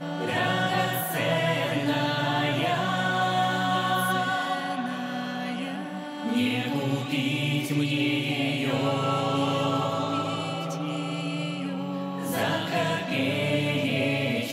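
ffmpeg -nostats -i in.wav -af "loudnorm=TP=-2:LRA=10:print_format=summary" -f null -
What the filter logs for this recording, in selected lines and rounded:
Input Integrated:    -26.6 LUFS
Input True Peak:     -13.2 dBTP
Input LRA:             2.7 LU
Input Threshold:     -36.6 LUFS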